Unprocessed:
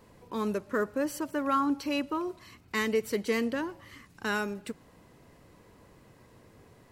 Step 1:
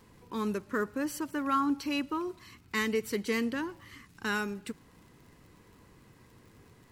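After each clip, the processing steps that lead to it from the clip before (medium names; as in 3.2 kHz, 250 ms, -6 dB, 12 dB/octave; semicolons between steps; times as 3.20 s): peaking EQ 610 Hz -9 dB 0.67 oct; crackle 57 per s -51 dBFS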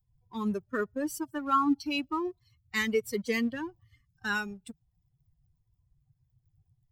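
expander on every frequency bin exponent 2; in parallel at -6 dB: crossover distortion -49.5 dBFS; on the sum: trim +1.5 dB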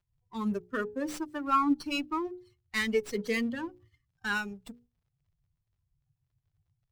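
hum notches 60/120/180/240/300/360/420/480/540 Hz; gate -58 dBFS, range -7 dB; sliding maximum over 3 samples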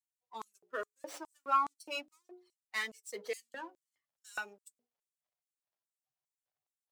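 flange 0.4 Hz, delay 2.1 ms, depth 7 ms, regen -58%; LFO high-pass square 2.4 Hz 620–7700 Hz; trim -2 dB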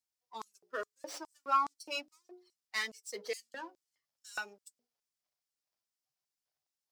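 peaking EQ 5.1 kHz +8.5 dB 0.57 oct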